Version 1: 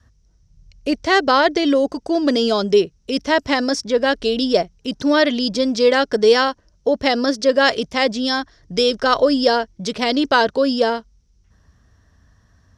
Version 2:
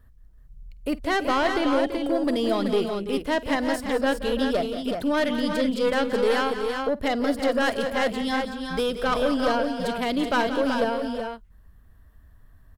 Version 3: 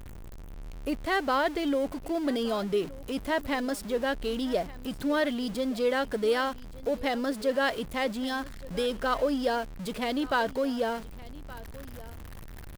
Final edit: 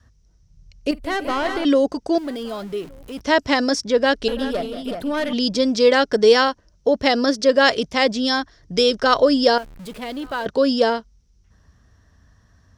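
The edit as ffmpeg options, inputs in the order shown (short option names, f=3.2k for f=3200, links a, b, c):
-filter_complex "[1:a]asplit=2[a][b];[2:a]asplit=2[c][d];[0:a]asplit=5[e][f][g][h][i];[e]atrim=end=0.912[j];[a]atrim=start=0.908:end=1.652[k];[f]atrim=start=1.648:end=2.182[l];[c]atrim=start=2.178:end=3.212[m];[g]atrim=start=3.208:end=4.282[n];[b]atrim=start=4.278:end=5.332[o];[h]atrim=start=5.328:end=9.582[p];[d]atrim=start=9.578:end=10.462[q];[i]atrim=start=10.458[r];[j][k]acrossfade=d=0.004:c1=hsin:c2=hsin[s];[s][l]acrossfade=d=0.004:c1=hsin:c2=hsin[t];[t][m]acrossfade=d=0.004:c1=hsin:c2=hsin[u];[u][n]acrossfade=d=0.004:c1=hsin:c2=hsin[v];[v][o]acrossfade=d=0.004:c1=hsin:c2=hsin[w];[w][p]acrossfade=d=0.004:c1=hsin:c2=hsin[x];[x][q]acrossfade=d=0.004:c1=hsin:c2=hsin[y];[y][r]acrossfade=d=0.004:c1=hsin:c2=hsin"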